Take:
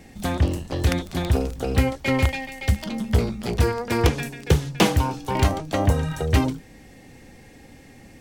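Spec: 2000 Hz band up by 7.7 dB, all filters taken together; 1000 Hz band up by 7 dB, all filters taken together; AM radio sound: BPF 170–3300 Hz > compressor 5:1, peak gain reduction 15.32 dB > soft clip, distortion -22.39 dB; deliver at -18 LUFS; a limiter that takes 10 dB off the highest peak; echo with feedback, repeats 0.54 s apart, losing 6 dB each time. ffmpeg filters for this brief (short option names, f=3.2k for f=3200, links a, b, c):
-af "equalizer=f=1k:t=o:g=7,equalizer=f=2k:t=o:g=8,alimiter=limit=-10dB:level=0:latency=1,highpass=170,lowpass=3.3k,aecho=1:1:540|1080|1620|2160|2700|3240:0.501|0.251|0.125|0.0626|0.0313|0.0157,acompressor=threshold=-33dB:ratio=5,asoftclip=threshold=-24dB,volume=18dB"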